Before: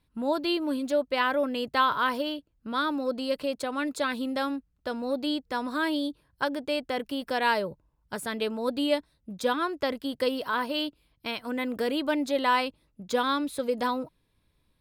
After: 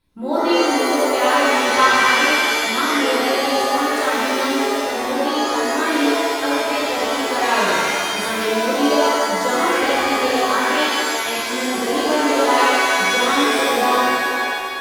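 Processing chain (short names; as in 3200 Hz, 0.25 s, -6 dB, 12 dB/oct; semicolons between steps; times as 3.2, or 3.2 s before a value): shimmer reverb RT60 2 s, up +7 st, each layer -2 dB, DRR -8.5 dB; gain -1 dB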